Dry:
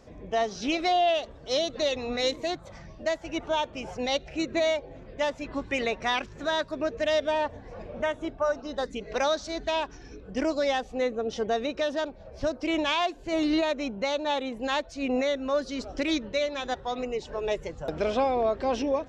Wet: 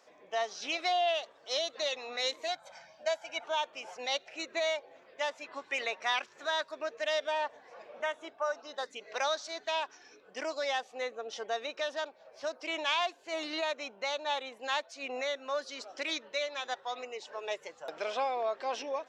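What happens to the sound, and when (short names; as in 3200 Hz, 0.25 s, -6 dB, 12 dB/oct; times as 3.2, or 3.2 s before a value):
2.48–3.44 comb 1.3 ms, depth 73%
whole clip: HPF 740 Hz 12 dB/oct; gain -2.5 dB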